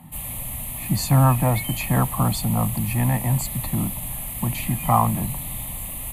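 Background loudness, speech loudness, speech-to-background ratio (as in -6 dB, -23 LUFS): -29.5 LUFS, -23.0 LUFS, 6.5 dB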